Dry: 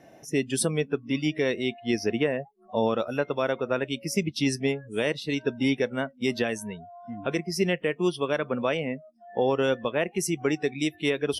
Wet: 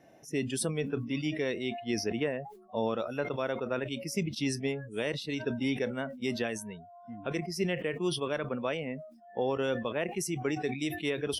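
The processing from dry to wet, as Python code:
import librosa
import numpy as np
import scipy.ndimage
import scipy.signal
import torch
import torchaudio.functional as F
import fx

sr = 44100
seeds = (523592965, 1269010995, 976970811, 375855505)

y = fx.sustainer(x, sr, db_per_s=86.0)
y = F.gain(torch.from_numpy(y), -6.5).numpy()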